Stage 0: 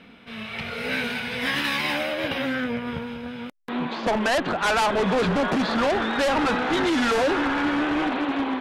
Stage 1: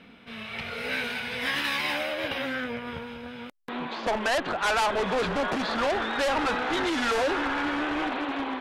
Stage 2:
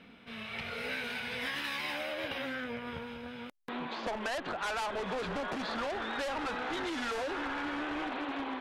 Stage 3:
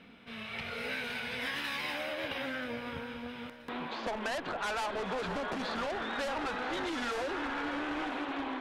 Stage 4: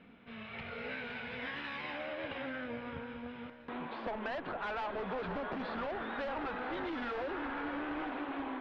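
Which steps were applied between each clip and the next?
dynamic bell 180 Hz, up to -7 dB, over -40 dBFS, Q 0.8; trim -2.5 dB
compression, threshold -29 dBFS, peak gain reduction 7 dB; trim -4 dB
echo whose repeats swap between lows and highs 490 ms, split 1.8 kHz, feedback 58%, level -10.5 dB
distance through air 350 m; trim -1.5 dB

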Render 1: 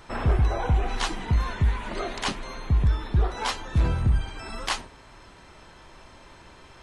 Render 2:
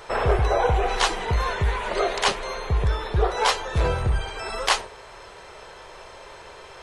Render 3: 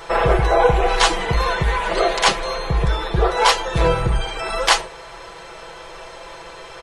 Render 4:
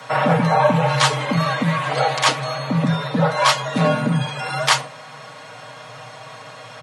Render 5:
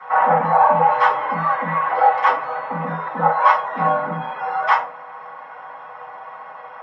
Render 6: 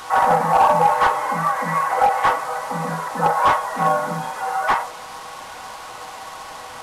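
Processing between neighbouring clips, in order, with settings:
resonant low shelf 350 Hz -7.5 dB, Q 3; trim +6.5 dB
comb 6 ms; trim +4.5 dB
frequency shift +110 Hz; trim -1 dB
band-pass filter 900 Hz, Q 1.9; reverberation RT60 0.30 s, pre-delay 3 ms, DRR -10 dB; trim -10 dB
one-bit delta coder 64 kbps, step -30.5 dBFS; endings held to a fixed fall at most 110 dB/s

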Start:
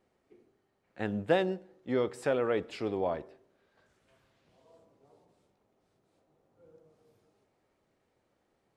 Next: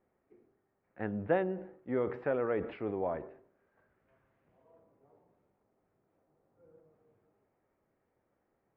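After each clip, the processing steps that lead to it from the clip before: low-pass 2.1 kHz 24 dB/octave; decay stretcher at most 100 dB/s; trim -3 dB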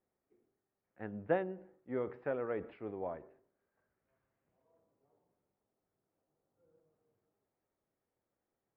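upward expansion 1.5:1, over -41 dBFS; trim -2 dB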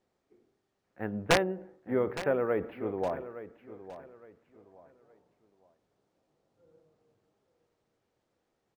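integer overflow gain 23.5 dB; feedback delay 864 ms, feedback 29%, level -14 dB; decimation joined by straight lines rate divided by 3×; trim +8.5 dB

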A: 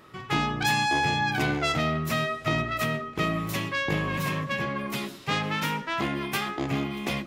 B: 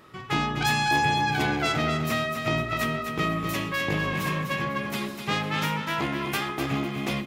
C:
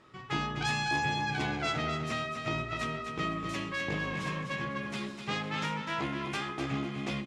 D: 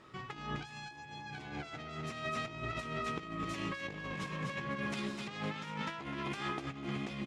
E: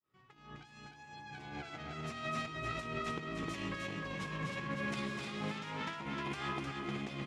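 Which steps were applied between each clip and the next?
feedback delay 251 ms, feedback 25%, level -7 dB
low-pass 8.3 kHz 24 dB/octave; doubling 15 ms -11.5 dB; trim -7 dB
compressor with a negative ratio -37 dBFS, ratio -0.5; trim -2.5 dB
fade-in on the opening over 1.78 s; delay 307 ms -4.5 dB; trim -1.5 dB

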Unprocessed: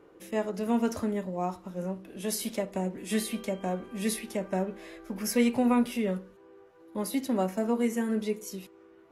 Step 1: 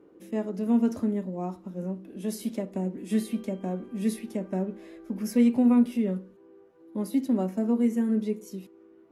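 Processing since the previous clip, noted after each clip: peaking EQ 250 Hz +13 dB 1.8 oct; trim -8 dB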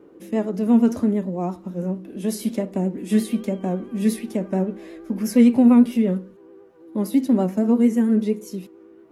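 vibrato 8.8 Hz 48 cents; trim +7 dB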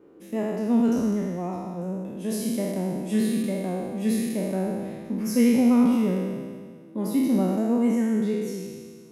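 spectral sustain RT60 1.81 s; trim -6.5 dB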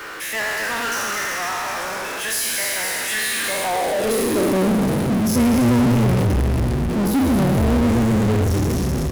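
frequency-shifting echo 252 ms, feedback 55%, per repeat -120 Hz, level -5 dB; high-pass sweep 1.6 kHz -> 64 Hz, 3.30–5.57 s; power-law waveshaper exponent 0.35; trim -3.5 dB

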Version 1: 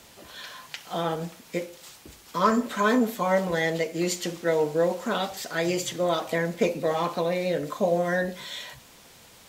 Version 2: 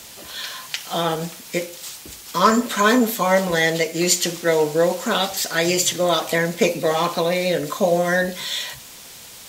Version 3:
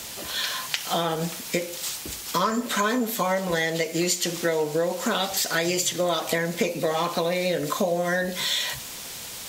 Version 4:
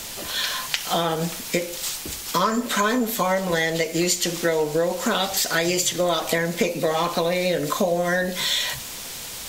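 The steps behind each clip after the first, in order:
treble shelf 2.6 kHz +9.5 dB; trim +5 dB
compression 6:1, threshold -25 dBFS, peak gain reduction 14.5 dB; trim +3.5 dB
added noise brown -55 dBFS; trim +2.5 dB

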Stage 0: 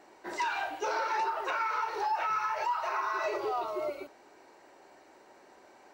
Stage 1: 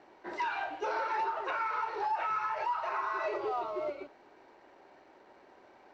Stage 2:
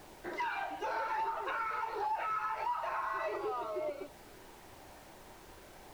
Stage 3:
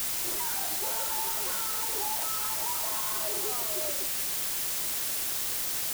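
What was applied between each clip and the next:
high-pass 44 Hz; in parallel at -9 dB: companded quantiser 4-bit; on the sum: distance through air 190 m; trim -3.5 dB
flange 0.5 Hz, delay 0.2 ms, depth 1.1 ms, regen -66%; added noise pink -63 dBFS; compression 1.5:1, threshold -47 dBFS, peak gain reduction 5.5 dB; trim +6 dB
peaking EQ 3.1 kHz -11.5 dB 2.4 oct; word length cut 6-bit, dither triangular; treble shelf 4.6 kHz +6 dB

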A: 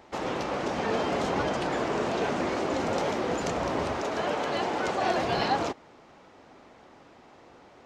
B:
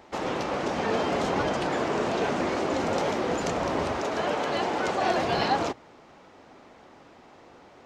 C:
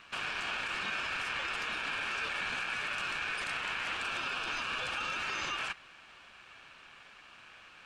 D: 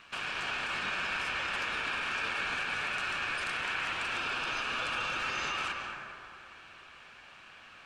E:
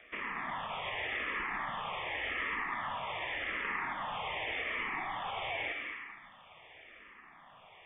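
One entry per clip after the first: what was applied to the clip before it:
hum notches 60/120 Hz; trim +1.5 dB
peak limiter -25 dBFS, peak gain reduction 11.5 dB; ring modulator 2 kHz
reverberation RT60 2.5 s, pre-delay 123 ms, DRR 2 dB
frequency inversion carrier 3.5 kHz; barber-pole phaser -0.87 Hz

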